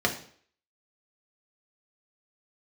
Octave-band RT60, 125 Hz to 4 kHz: 0.50, 0.50, 0.55, 0.50, 0.50, 0.50 s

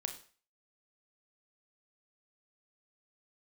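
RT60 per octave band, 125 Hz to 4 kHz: 0.40, 0.35, 0.40, 0.40, 0.40, 0.40 s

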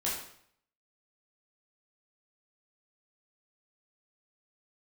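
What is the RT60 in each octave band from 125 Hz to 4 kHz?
0.70, 0.65, 0.65, 0.65, 0.60, 0.55 s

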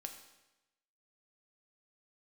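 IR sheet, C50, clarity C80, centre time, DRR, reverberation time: 8.0 dB, 10.0 dB, 20 ms, 4.5 dB, 1.0 s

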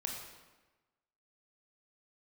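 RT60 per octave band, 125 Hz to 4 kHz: 1.2, 1.2, 1.2, 1.2, 1.1, 0.90 s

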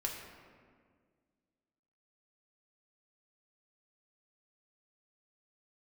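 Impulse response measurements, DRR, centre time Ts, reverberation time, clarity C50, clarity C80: -1.5 dB, 58 ms, 1.8 s, 4.0 dB, 5.0 dB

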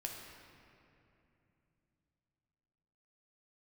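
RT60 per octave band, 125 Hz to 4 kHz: 4.3, 3.9, 3.1, 2.7, 2.6, 1.7 s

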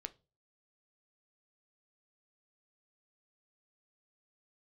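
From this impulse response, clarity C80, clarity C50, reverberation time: 28.5 dB, 21.0 dB, 0.35 s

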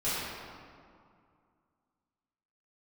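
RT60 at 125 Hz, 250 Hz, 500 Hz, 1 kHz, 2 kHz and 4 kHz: 2.6, 2.6, 2.2, 2.3, 1.7, 1.3 s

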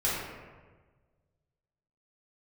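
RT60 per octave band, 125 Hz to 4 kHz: 2.1, 1.5, 1.5, 1.3, 1.2, 0.80 s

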